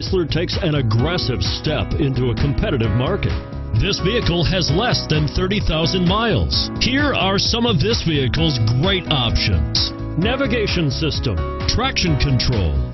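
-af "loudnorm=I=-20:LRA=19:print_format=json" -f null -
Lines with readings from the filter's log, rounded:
"input_i" : "-18.4",
"input_tp" : "-1.6",
"input_lra" : "2.0",
"input_thresh" : "-28.4",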